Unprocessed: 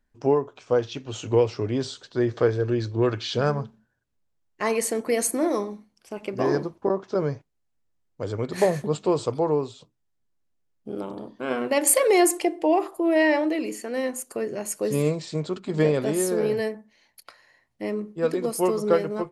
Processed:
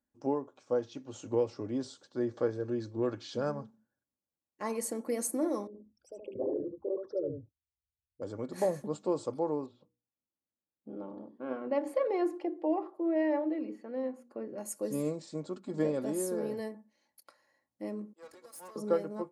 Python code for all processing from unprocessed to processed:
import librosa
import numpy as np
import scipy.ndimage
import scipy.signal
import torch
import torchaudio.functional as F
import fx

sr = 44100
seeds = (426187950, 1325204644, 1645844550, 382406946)

y = fx.chain(x, sr, fx.envelope_sharpen(power=3.0),
    fx.low_shelf_res(hz=120.0, db=12.0, q=1.5),
    fx.echo_single(ms=75, db=-5.0), at=(5.67, 8.22))
y = fx.chain(y, sr, fx.air_absorb(metres=330.0),
    fx.hum_notches(base_hz=60, count=8), at=(9.66, 14.58))
y = fx.chain(y, sr, fx.highpass(hz=1000.0, slope=12),
    fx.tube_stage(drive_db=35.0, bias=0.8), at=(18.13, 18.76))
y = scipy.signal.sosfilt(scipy.signal.butter(2, 120.0, 'highpass', fs=sr, output='sos'), y)
y = fx.peak_eq(y, sr, hz=2700.0, db=-10.5, octaves=1.7)
y = y + 0.43 * np.pad(y, (int(3.6 * sr / 1000.0), 0))[:len(y)]
y = y * librosa.db_to_amplitude(-8.5)